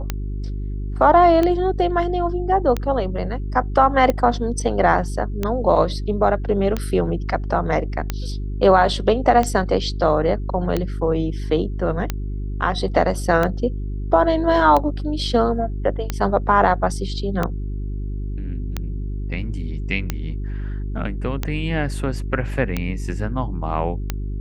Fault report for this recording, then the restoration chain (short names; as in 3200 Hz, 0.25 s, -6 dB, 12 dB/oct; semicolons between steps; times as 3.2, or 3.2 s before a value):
hum 50 Hz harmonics 8 -26 dBFS
tick 45 rpm -8 dBFS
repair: de-click; de-hum 50 Hz, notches 8